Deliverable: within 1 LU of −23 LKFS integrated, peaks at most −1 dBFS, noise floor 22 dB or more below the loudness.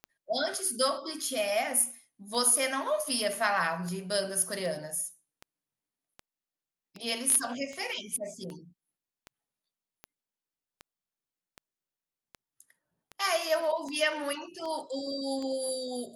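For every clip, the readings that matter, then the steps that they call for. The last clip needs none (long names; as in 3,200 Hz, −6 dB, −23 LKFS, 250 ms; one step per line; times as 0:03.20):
number of clicks 21; integrated loudness −30.0 LKFS; sample peak −11.5 dBFS; target loudness −23.0 LKFS
→ click removal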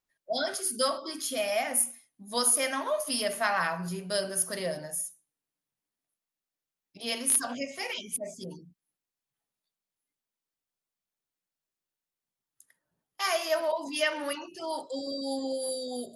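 number of clicks 0; integrated loudness −30.0 LKFS; sample peak −11.5 dBFS; target loudness −23.0 LKFS
→ level +7 dB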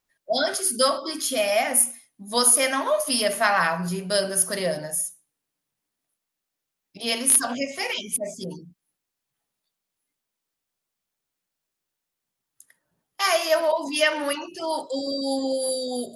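integrated loudness −23.0 LKFS; sample peak −4.5 dBFS; background noise floor −84 dBFS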